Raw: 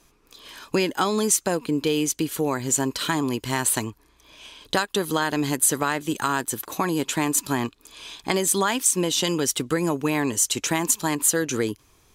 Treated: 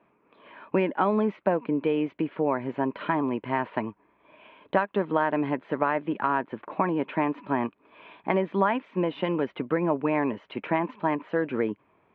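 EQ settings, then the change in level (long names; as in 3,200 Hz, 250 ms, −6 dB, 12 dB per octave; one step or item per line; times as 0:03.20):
high-frequency loss of the air 370 metres
loudspeaker in its box 170–2,600 Hz, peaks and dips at 200 Hz +5 dB, 610 Hz +8 dB, 950 Hz +5 dB, 2,300 Hz +4 dB
−2.0 dB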